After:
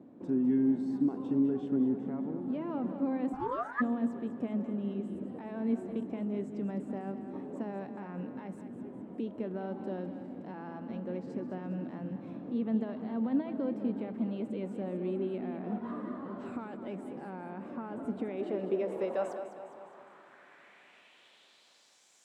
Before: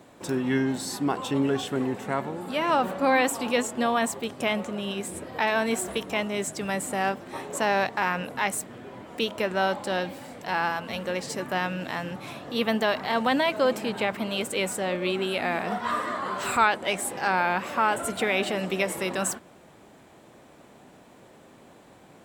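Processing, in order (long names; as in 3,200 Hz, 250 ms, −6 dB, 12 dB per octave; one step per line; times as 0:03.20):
in parallel at −2 dB: downward compressor, threshold −41 dBFS, peak gain reduction 23 dB
on the sum: brickwall limiter −17 dBFS, peak gain reduction 8.5 dB
band-pass filter sweep 250 Hz → 6,500 Hz, 0:18.16–0:22.11
echo with a time of its own for lows and highs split 320 Hz, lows 301 ms, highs 204 ms, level −10 dB
0:03.32–0:03.80: ring modulation 470 Hz → 1,500 Hz
on a send at −19 dB: convolution reverb RT60 3.9 s, pre-delay 30 ms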